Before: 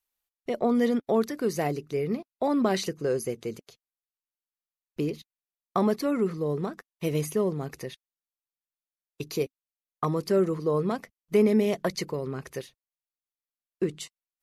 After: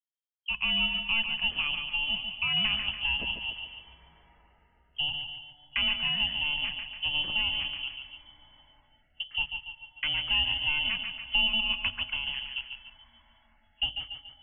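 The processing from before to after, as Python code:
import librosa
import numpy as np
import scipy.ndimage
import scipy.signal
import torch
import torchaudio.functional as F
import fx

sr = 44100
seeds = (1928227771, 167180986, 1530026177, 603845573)

p1 = fx.bit_reversed(x, sr, seeds[0], block=16)
p2 = fx.env_lowpass(p1, sr, base_hz=410.0, full_db=-22.5)
p3 = fx.freq_invert(p2, sr, carrier_hz=3200)
p4 = fx.hum_notches(p3, sr, base_hz=50, count=3)
p5 = p4 + fx.echo_feedback(p4, sr, ms=143, feedback_pct=42, wet_db=-7.5, dry=0)
p6 = fx.rev_plate(p5, sr, seeds[1], rt60_s=4.8, hf_ratio=0.7, predelay_ms=0, drr_db=17.5)
p7 = fx.dynamic_eq(p6, sr, hz=200.0, q=1.7, threshold_db=-59.0, ratio=4.0, max_db=7)
p8 = fx.noise_reduce_blind(p7, sr, reduce_db=20)
p9 = fx.low_shelf(p8, sr, hz=100.0, db=9.5)
p10 = fx.band_squash(p9, sr, depth_pct=40)
y = F.gain(torch.from_numpy(p10), -3.5).numpy()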